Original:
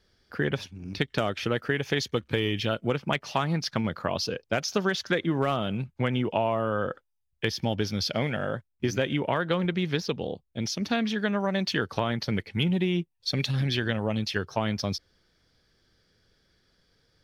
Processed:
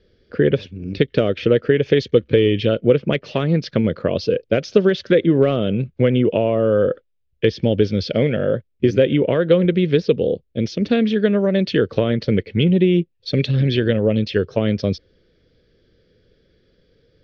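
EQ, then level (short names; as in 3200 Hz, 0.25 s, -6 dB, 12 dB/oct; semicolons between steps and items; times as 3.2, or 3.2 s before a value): air absorption 180 m; resonant low shelf 650 Hz +9 dB, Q 3; bell 3100 Hz +8 dB 2.1 oct; 0.0 dB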